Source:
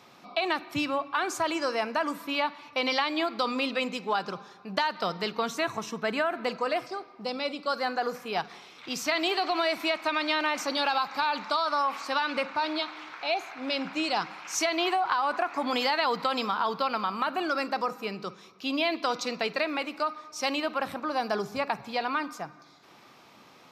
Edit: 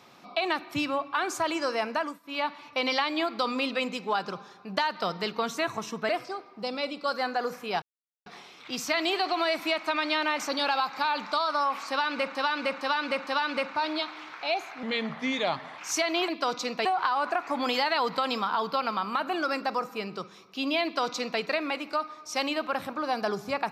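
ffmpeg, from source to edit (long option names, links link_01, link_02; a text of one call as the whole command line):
ffmpeg -i in.wav -filter_complex "[0:a]asplit=12[link_01][link_02][link_03][link_04][link_05][link_06][link_07][link_08][link_09][link_10][link_11][link_12];[link_01]atrim=end=2.2,asetpts=PTS-STARTPTS,afade=type=out:start_time=1.89:duration=0.31:curve=qsin:silence=0.1[link_13];[link_02]atrim=start=2.2:end=2.23,asetpts=PTS-STARTPTS,volume=-20dB[link_14];[link_03]atrim=start=2.23:end=6.092,asetpts=PTS-STARTPTS,afade=type=in:duration=0.31:curve=qsin:silence=0.1[link_15];[link_04]atrim=start=6.708:end=8.44,asetpts=PTS-STARTPTS,afade=type=out:start_time=1.728:duration=0.004:curve=hsin,apad=pad_dur=0.44[link_16];[link_05]atrim=start=8.44:end=12.532,asetpts=PTS-STARTPTS,afade=type=in:duration=0.004:curve=hsin[link_17];[link_06]atrim=start=12.068:end=12.532[link_18];[link_07]atrim=start=12.068:end=12.532[link_19];[link_08]atrim=start=12.068:end=13.634[link_20];[link_09]atrim=start=13.63:end=14.42,asetpts=PTS-STARTPTS,asetrate=36603,aresample=44100[link_21];[link_10]atrim=start=14.416:end=14.922[link_22];[link_11]atrim=start=18.898:end=19.472[link_23];[link_12]atrim=start=14.918[link_24];[link_13][link_14][link_15]concat=n=3:v=0:a=1[link_25];[link_16][link_17]concat=n=2:v=0:a=1[link_26];[link_25][link_26]acrossfade=duration=0.004:curve1=hsin:curve2=hsin[link_27];[link_27][link_18]acrossfade=duration=0.004:curve1=hsin:curve2=hsin[link_28];[link_28][link_19]acrossfade=duration=0.004:curve1=hsin:curve2=hsin[link_29];[link_29][link_20]acrossfade=duration=0.004:curve1=hsin:curve2=hsin[link_30];[link_30][link_21]acrossfade=duration=0.004:curve1=hsin:curve2=hsin[link_31];[link_31][link_22]acrossfade=duration=0.004:curve1=hsin:curve2=hsin[link_32];[link_32][link_23]acrossfade=duration=0.004:curve1=hsin:curve2=hsin[link_33];[link_33][link_24]acrossfade=duration=0.004:curve1=hsin:curve2=hsin" out.wav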